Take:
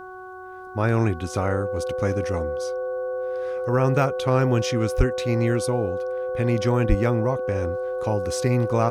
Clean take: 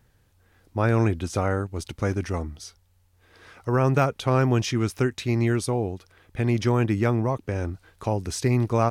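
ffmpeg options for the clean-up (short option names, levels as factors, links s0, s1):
-filter_complex "[0:a]bandreject=f=371.6:t=h:w=4,bandreject=f=743.2:t=h:w=4,bandreject=f=1114.8:t=h:w=4,bandreject=f=1486.4:t=h:w=4,bandreject=f=510:w=30,asplit=3[s0][s1][s2];[s0]afade=t=out:st=4.97:d=0.02[s3];[s1]highpass=f=140:w=0.5412,highpass=f=140:w=1.3066,afade=t=in:st=4.97:d=0.02,afade=t=out:st=5.09:d=0.02[s4];[s2]afade=t=in:st=5.09:d=0.02[s5];[s3][s4][s5]amix=inputs=3:normalize=0,asplit=3[s6][s7][s8];[s6]afade=t=out:st=6.88:d=0.02[s9];[s7]highpass=f=140:w=0.5412,highpass=f=140:w=1.3066,afade=t=in:st=6.88:d=0.02,afade=t=out:st=7:d=0.02[s10];[s8]afade=t=in:st=7:d=0.02[s11];[s9][s10][s11]amix=inputs=3:normalize=0"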